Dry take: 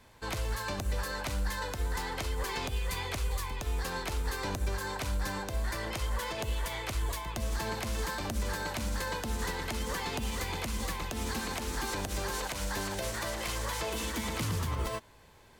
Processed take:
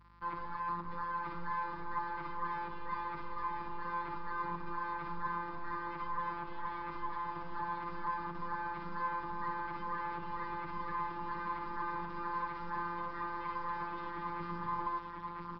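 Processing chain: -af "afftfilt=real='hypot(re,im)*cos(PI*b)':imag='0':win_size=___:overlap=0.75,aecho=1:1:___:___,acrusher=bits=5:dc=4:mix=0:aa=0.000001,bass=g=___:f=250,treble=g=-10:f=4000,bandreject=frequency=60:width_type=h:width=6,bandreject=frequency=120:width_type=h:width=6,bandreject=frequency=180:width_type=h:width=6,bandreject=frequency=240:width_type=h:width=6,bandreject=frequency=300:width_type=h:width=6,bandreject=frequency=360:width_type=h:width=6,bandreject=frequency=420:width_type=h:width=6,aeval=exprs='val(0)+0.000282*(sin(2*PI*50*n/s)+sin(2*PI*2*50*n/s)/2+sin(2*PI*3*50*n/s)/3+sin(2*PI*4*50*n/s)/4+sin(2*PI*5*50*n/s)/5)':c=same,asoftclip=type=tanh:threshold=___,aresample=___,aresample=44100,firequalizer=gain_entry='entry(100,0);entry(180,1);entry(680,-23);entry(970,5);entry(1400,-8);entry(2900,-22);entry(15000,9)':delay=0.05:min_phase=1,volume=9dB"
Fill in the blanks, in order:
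1024, 996, 0.531, -13, -29.5dB, 11025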